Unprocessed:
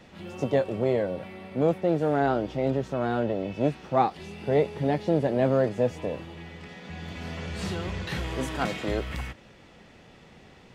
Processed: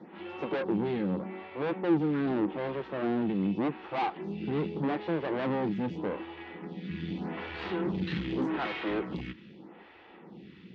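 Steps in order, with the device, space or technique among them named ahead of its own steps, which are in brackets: vibe pedal into a guitar amplifier (lamp-driven phase shifter 0.83 Hz; valve stage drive 33 dB, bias 0.55; cabinet simulation 110–3700 Hz, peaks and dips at 110 Hz -7 dB, 190 Hz +9 dB, 330 Hz +10 dB, 610 Hz -6 dB, 870 Hz +4 dB); trim +4.5 dB

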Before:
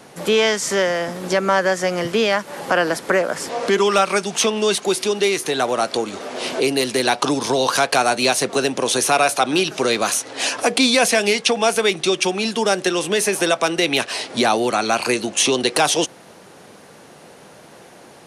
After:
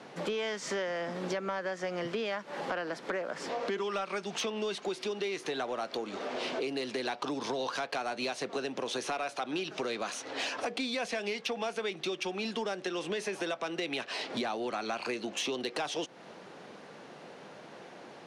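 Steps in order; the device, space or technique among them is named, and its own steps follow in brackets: AM radio (band-pass 150–4400 Hz; compression 5:1, threshold -27 dBFS, peak gain reduction 14 dB; saturation -18.5 dBFS, distortion -23 dB); trim -4.5 dB

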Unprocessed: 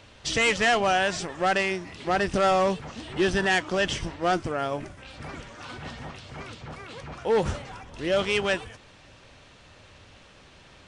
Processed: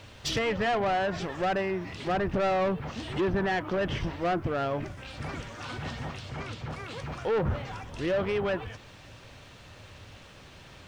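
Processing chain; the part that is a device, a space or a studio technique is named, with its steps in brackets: low-pass that closes with the level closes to 1.4 kHz, closed at -21 dBFS; open-reel tape (saturation -24.5 dBFS, distortion -11 dB; peaking EQ 110 Hz +5 dB 0.89 oct; white noise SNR 44 dB); 6.29–6.70 s: treble shelf 8.8 kHz -6 dB; trim +1.5 dB

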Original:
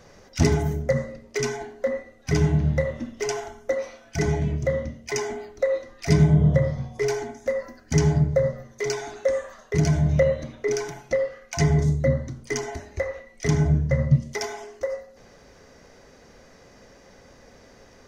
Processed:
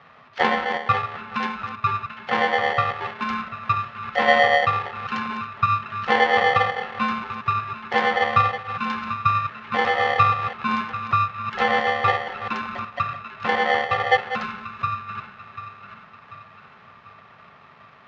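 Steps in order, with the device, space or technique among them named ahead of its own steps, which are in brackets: chunks repeated in reverse 195 ms, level -10 dB; 3.63–4.65 s: peaking EQ 77 Hz +12.5 dB 0.86 oct; feedback echo behind a band-pass 741 ms, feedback 48%, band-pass 1.3 kHz, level -6.5 dB; ring modulator pedal into a guitar cabinet (polarity switched at an audio rate 640 Hz; cabinet simulation 110–3500 Hz, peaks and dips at 150 Hz +5 dB, 330 Hz -8 dB, 540 Hz -3 dB, 1.2 kHz +7 dB, 1.8 kHz +6 dB); trim -1.5 dB

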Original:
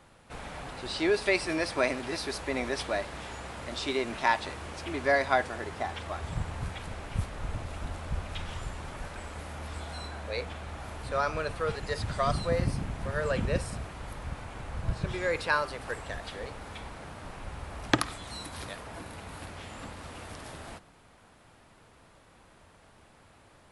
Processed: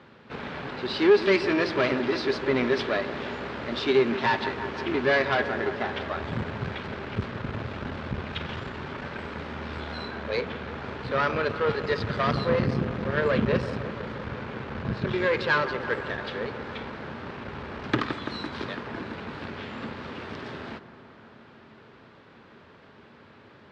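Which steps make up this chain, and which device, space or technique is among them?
analogue delay pedal into a guitar amplifier (bucket-brigade echo 168 ms, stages 2048, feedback 78%, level -15 dB; valve stage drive 27 dB, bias 0.65; cabinet simulation 110–4400 Hz, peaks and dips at 130 Hz +3 dB, 230 Hz +7 dB, 400 Hz +7 dB, 720 Hz -5 dB, 1.6 kHz +3 dB); trim +8.5 dB

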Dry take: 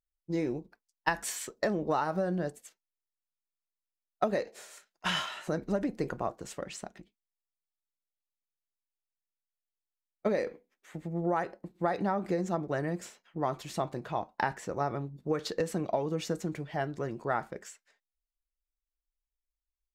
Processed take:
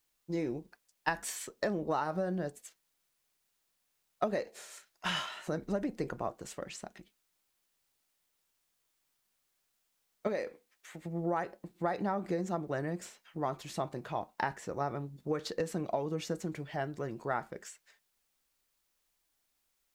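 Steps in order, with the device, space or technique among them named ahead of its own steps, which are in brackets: noise-reduction cassette on a plain deck (tape noise reduction on one side only encoder only; wow and flutter 27 cents; white noise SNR 41 dB); 10.27–11.06 s: bass shelf 370 Hz -6 dB; trim -3 dB

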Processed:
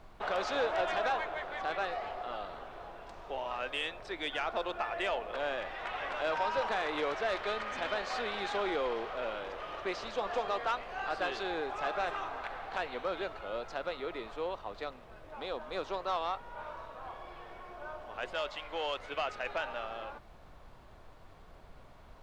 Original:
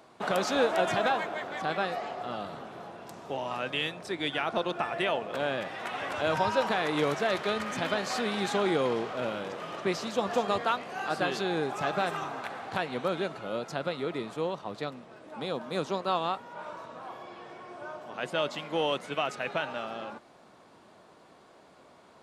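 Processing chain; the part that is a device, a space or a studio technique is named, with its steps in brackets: aircraft cabin announcement (band-pass 440–4000 Hz; saturation -21.5 dBFS, distortion -18 dB; brown noise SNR 17 dB); 18.33–19.00 s: peaking EQ 230 Hz -6 dB 2.4 oct; trim -2 dB

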